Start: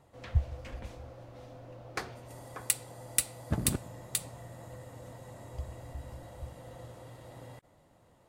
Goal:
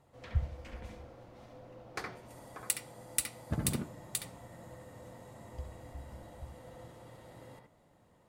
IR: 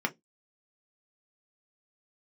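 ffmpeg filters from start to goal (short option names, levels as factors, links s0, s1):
-filter_complex "[0:a]asplit=2[s0][s1];[1:a]atrim=start_sample=2205,adelay=67[s2];[s1][s2]afir=irnorm=-1:irlink=0,volume=0.299[s3];[s0][s3]amix=inputs=2:normalize=0,volume=0.631"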